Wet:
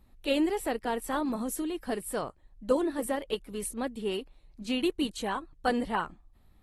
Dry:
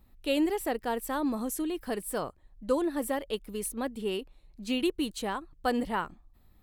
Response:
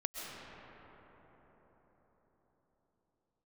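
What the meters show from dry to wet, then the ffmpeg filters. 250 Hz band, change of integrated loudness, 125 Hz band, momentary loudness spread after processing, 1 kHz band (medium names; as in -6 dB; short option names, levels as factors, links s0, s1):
0.0 dB, 0.0 dB, +0.5 dB, 8 LU, +0.5 dB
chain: -ar 48000 -c:a aac -b:a 32k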